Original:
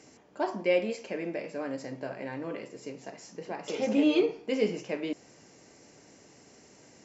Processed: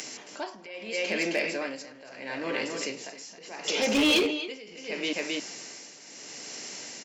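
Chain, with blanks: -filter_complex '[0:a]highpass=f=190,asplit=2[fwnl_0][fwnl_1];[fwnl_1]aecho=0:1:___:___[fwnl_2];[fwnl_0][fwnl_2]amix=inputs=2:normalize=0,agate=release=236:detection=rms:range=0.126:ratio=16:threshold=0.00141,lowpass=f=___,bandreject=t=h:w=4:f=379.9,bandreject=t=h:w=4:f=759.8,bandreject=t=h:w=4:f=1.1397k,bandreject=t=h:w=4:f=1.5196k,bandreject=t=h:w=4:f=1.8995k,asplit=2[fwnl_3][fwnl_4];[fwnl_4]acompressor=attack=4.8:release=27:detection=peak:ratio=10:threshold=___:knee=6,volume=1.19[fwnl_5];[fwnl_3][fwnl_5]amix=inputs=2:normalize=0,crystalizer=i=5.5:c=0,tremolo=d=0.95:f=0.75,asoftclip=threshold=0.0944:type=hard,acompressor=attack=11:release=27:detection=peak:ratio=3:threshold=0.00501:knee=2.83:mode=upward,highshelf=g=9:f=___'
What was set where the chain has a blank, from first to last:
267, 0.447, 3.7k, 0.0112, 2.3k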